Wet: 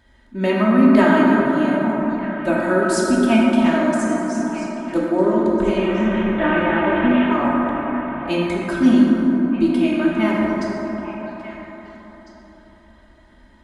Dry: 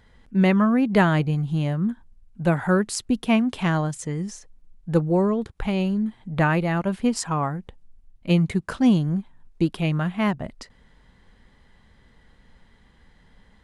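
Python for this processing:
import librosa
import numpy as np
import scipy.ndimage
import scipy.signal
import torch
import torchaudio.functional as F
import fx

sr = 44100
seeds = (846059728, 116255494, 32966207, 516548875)

y = fx.delta_mod(x, sr, bps=16000, step_db=-23.5, at=(5.77, 7.32))
y = scipy.signal.sosfilt(scipy.signal.butter(2, 42.0, 'highpass', fs=sr, output='sos'), y)
y = fx.hum_notches(y, sr, base_hz=50, count=3)
y = y + 0.86 * np.pad(y, (int(3.2 * sr / 1000.0), 0))[:len(y)]
y = fx.echo_stepped(y, sr, ms=413, hz=290.0, octaves=1.4, feedback_pct=70, wet_db=-6.0)
y = fx.rev_plate(y, sr, seeds[0], rt60_s=4.3, hf_ratio=0.3, predelay_ms=0, drr_db=-4.5)
y = y * 10.0 ** (-2.5 / 20.0)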